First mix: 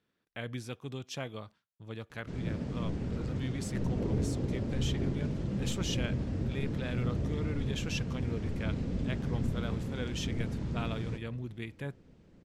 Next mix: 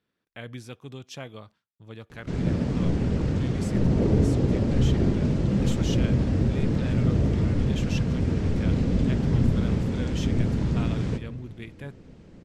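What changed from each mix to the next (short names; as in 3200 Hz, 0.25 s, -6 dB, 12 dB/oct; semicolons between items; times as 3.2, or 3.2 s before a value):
background +10.5 dB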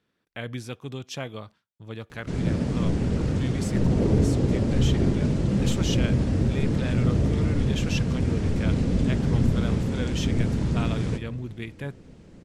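speech +5.0 dB; background: remove air absorption 53 m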